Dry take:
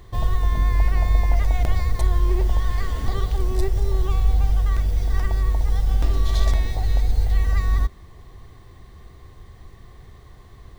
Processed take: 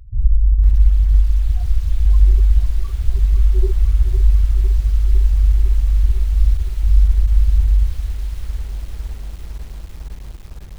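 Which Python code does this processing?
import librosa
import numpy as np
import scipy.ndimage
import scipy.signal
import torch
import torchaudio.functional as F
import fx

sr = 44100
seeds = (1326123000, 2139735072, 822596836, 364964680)

y = fx.dereverb_blind(x, sr, rt60_s=1.3)
y = fx.echo_feedback(y, sr, ms=62, feedback_pct=41, wet_db=-3.5)
y = fx.rider(y, sr, range_db=4, speed_s=2.0)
y = fx.spec_topn(y, sr, count=4)
y = fx.peak_eq(y, sr, hz=230.0, db=-8.5, octaves=1.4)
y = fx.echo_crushed(y, sr, ms=505, feedback_pct=80, bits=7, wet_db=-10)
y = F.gain(torch.from_numpy(y), 5.5).numpy()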